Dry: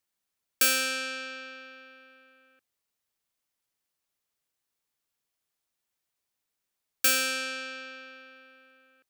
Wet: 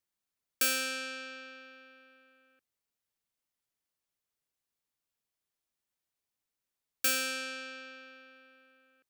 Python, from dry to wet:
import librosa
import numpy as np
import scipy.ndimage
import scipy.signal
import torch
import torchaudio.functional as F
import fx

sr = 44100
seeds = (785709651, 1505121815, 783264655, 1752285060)

y = fx.low_shelf(x, sr, hz=340.0, db=3.5)
y = y * 10.0 ** (-5.5 / 20.0)